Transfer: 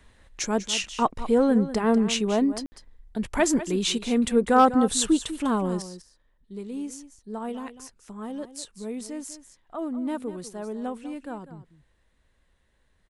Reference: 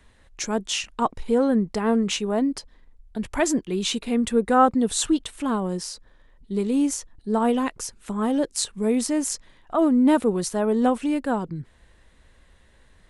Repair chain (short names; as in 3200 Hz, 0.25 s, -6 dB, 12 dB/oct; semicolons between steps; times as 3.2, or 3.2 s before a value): clip repair -8.5 dBFS; room tone fill 2.66–2.72; inverse comb 0.197 s -13.5 dB; gain 0 dB, from 5.82 s +12 dB